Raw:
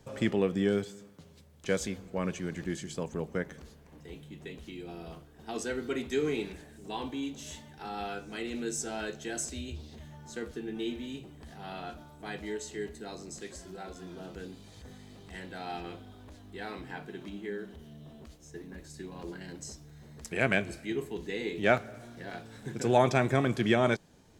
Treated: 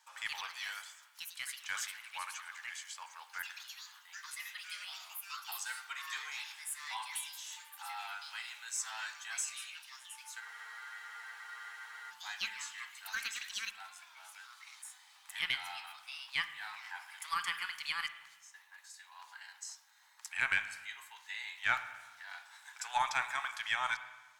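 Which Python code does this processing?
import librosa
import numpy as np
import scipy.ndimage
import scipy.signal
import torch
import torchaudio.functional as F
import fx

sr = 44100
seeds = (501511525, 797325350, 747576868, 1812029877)

y = scipy.signal.sosfilt(scipy.signal.cheby1(5, 1.0, 870.0, 'highpass', fs=sr, output='sos'), x)
y = fx.cheby_harmonics(y, sr, harmonics=(2,), levels_db=(-18,), full_scale_db=-13.5)
y = fx.echo_pitch(y, sr, ms=128, semitones=5, count=2, db_per_echo=-3.0)
y = fx.rev_spring(y, sr, rt60_s=1.2, pass_ms=(41, 46), chirp_ms=70, drr_db=11.0)
y = fx.spec_freeze(y, sr, seeds[0], at_s=10.43, hold_s=1.68)
y = y * librosa.db_to_amplitude(-1.0)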